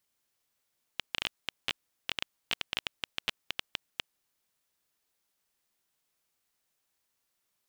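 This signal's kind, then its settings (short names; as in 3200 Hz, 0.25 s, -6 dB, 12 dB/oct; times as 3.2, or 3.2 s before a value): random clicks 9.8/s -12 dBFS 3.17 s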